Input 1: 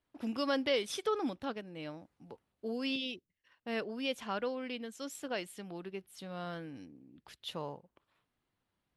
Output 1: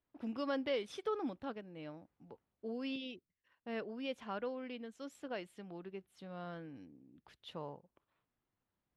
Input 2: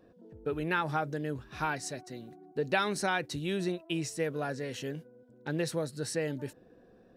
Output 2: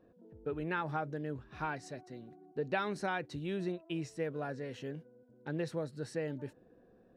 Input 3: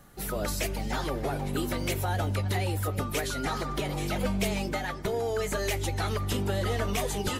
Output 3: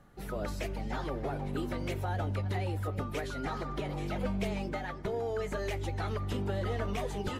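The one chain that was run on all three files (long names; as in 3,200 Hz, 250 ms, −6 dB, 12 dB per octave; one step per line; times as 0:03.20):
low-pass filter 2,000 Hz 6 dB per octave
level −4 dB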